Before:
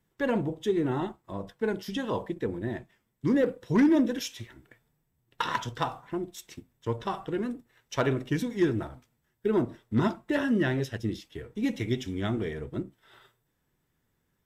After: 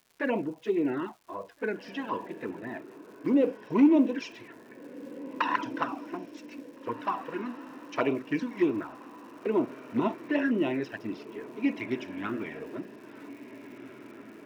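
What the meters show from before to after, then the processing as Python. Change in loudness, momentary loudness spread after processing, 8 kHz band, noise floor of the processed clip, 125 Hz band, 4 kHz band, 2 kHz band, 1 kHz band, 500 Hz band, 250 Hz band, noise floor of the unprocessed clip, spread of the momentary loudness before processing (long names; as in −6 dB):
−0.5 dB, 20 LU, below −10 dB, −51 dBFS, −12.0 dB, −6.0 dB, 0.0 dB, +1.0 dB, −1.5 dB, 0.0 dB, −76 dBFS, 14 LU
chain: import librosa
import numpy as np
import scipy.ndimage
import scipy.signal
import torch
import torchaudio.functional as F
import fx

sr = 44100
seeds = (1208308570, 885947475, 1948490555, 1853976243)

y = fx.env_flanger(x, sr, rest_ms=4.6, full_db=-22.0)
y = fx.cabinet(y, sr, low_hz=280.0, low_slope=12, high_hz=4900.0, hz=(280.0, 660.0, 1000.0, 1500.0, 2500.0, 3500.0), db=(6, 3, 6, 5, 9, -10))
y = fx.echo_diffused(y, sr, ms=1849, feedback_pct=53, wet_db=-15)
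y = fx.dmg_crackle(y, sr, seeds[0], per_s=300.0, level_db=-49.0)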